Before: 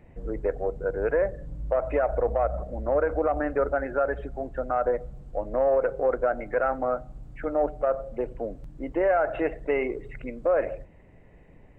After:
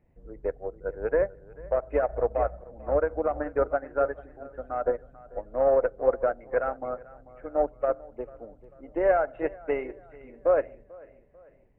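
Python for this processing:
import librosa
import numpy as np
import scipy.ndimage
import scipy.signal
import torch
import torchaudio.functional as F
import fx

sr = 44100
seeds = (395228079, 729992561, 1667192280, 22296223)

p1 = fx.high_shelf(x, sr, hz=2600.0, db=-7.0)
p2 = p1 + fx.echo_feedback(p1, sr, ms=443, feedback_pct=46, wet_db=-10.0, dry=0)
p3 = fx.upward_expand(p2, sr, threshold_db=-31.0, expansion=2.5)
y = F.gain(torch.from_numpy(p3), 3.5).numpy()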